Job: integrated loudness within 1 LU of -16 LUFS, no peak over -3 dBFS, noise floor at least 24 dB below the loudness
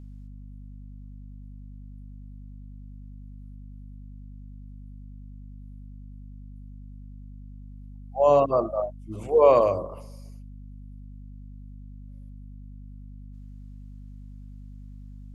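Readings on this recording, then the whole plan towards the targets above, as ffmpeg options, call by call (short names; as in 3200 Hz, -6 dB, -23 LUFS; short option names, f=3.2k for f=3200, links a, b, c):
hum 50 Hz; harmonics up to 250 Hz; hum level -40 dBFS; loudness -22.0 LUFS; peak -6.0 dBFS; loudness target -16.0 LUFS
-> -af "bandreject=f=50:t=h:w=6,bandreject=f=100:t=h:w=6,bandreject=f=150:t=h:w=6,bandreject=f=200:t=h:w=6,bandreject=f=250:t=h:w=6"
-af "volume=6dB,alimiter=limit=-3dB:level=0:latency=1"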